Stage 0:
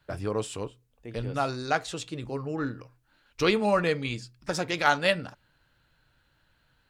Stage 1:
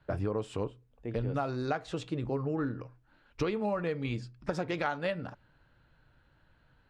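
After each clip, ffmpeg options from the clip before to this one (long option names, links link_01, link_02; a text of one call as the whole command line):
ffmpeg -i in.wav -af "lowpass=frequency=1200:poles=1,acompressor=threshold=-32dB:ratio=10,volume=4dB" out.wav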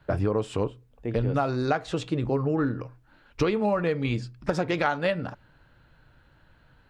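ffmpeg -i in.wav -af "asoftclip=type=hard:threshold=-18.5dB,volume=7dB" out.wav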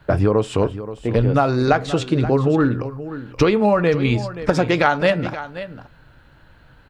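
ffmpeg -i in.wav -af "aecho=1:1:527:0.211,volume=8.5dB" out.wav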